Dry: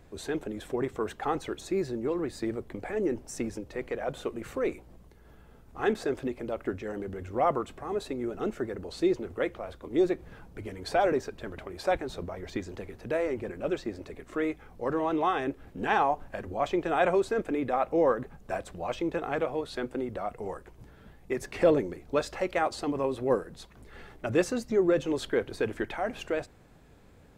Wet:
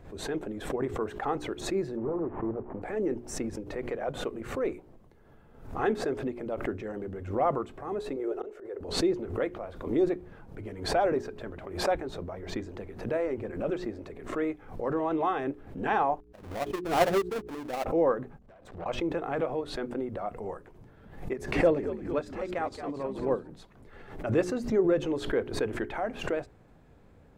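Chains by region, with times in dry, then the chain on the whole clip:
1.97–2.82 s: one-bit delta coder 16 kbps, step -45 dBFS + resonant low-pass 940 Hz, resonance Q 2
8.16–8.81 s: resonant low shelf 280 Hz -13 dB, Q 3 + slow attack 259 ms
16.20–17.86 s: square wave that keeps the level + upward expansion 2.5:1, over -43 dBFS
18.38–18.86 s: treble shelf 9.4 kHz -11.5 dB + compression 12:1, threshold -44 dBFS + valve stage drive 49 dB, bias 0.65
21.33–23.50 s: frequency-shifting echo 222 ms, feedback 44%, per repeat -86 Hz, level -8 dB + upward expansion, over -37 dBFS
whole clip: treble shelf 2.4 kHz -10.5 dB; hum notches 60/120/180/240/300/360/420 Hz; swell ahead of each attack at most 95 dB/s

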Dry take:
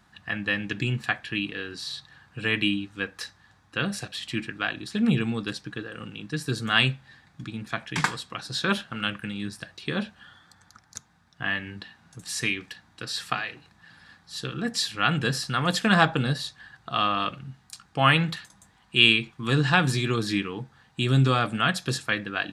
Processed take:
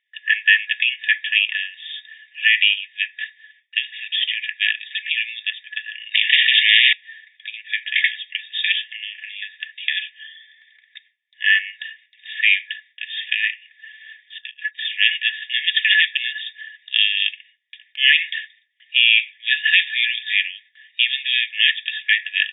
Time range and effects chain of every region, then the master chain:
3.78–4.53 s: compression 10:1, threshold -31 dBFS + tilt EQ +2.5 dB/octave
6.14–6.93 s: small resonant body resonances 680/1500/2800 Hz, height 15 dB, ringing for 55 ms + spectrum-flattening compressor 10:1
8.96–9.42 s: doubling 33 ms -4 dB + compression 10:1, threshold -36 dBFS
14.38–14.85 s: low-pass 4.5 kHz + gate -32 dBFS, range -16 dB + tilt EQ -2 dB/octave
whole clip: FFT band-pass 1.7–3.7 kHz; gate with hold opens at -56 dBFS; loudness maximiser +15.5 dB; trim -1 dB

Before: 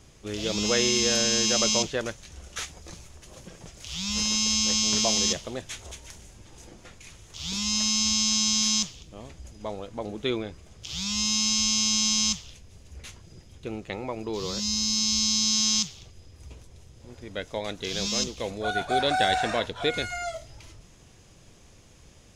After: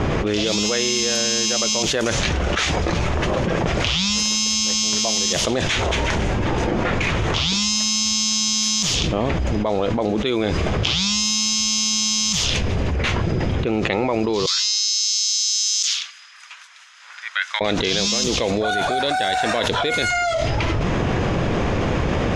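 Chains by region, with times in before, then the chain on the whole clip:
14.46–17.61 s: steep high-pass 1.4 kHz + peaking EQ 2.1 kHz -13 dB 2.8 oct
whole clip: level-controlled noise filter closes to 1.6 kHz, open at -23 dBFS; bass shelf 100 Hz -9.5 dB; level flattener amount 100%

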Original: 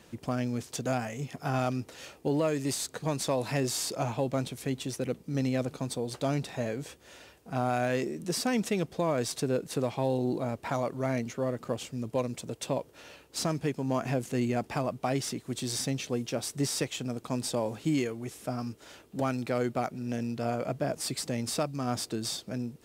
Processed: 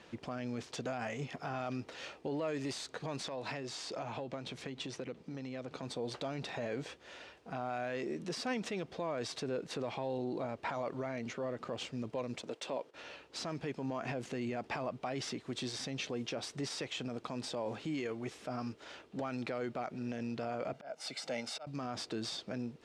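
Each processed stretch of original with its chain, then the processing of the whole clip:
3.28–5.83 s: low-pass 9.8 kHz + hum notches 50/100/150 Hz + compression 12:1, threshold -35 dBFS
12.42–12.94 s: high-pass 240 Hz + gate -57 dBFS, range -10 dB
20.73–21.67 s: high-pass 300 Hz + comb 1.4 ms, depth 62% + slow attack 449 ms
whole clip: peak limiter -27.5 dBFS; low-pass 4.2 kHz 12 dB/octave; bass shelf 250 Hz -10 dB; trim +2 dB

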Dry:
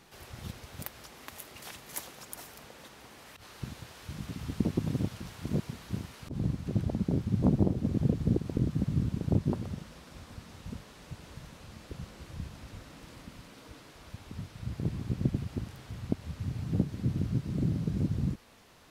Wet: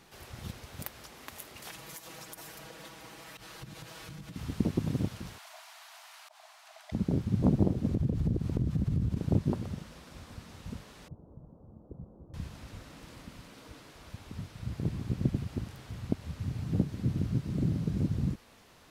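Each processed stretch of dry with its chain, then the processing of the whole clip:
1.70–4.36 s: comb 6.2 ms, depth 100% + compression 10:1, threshold -41 dBFS
5.38–6.92 s: brick-wall FIR high-pass 610 Hz + transformer saturation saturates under 2.9 kHz
7.93–9.17 s: bass shelf 160 Hz +11 dB + compression 5:1, threshold -25 dBFS
11.08–12.34 s: Gaussian low-pass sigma 12 samples + bass shelf 120 Hz -6.5 dB
whole clip: none

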